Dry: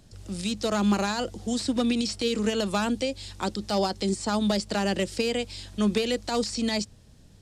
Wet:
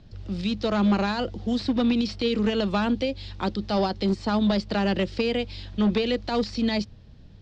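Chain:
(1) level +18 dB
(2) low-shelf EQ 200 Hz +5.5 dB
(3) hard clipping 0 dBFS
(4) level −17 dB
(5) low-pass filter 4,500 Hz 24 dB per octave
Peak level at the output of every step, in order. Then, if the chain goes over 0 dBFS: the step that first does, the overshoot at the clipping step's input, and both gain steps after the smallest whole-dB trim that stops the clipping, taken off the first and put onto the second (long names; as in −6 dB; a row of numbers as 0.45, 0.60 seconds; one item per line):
+2.0, +5.0, 0.0, −17.0, −16.0 dBFS
step 1, 5.0 dB
step 1 +13 dB, step 4 −12 dB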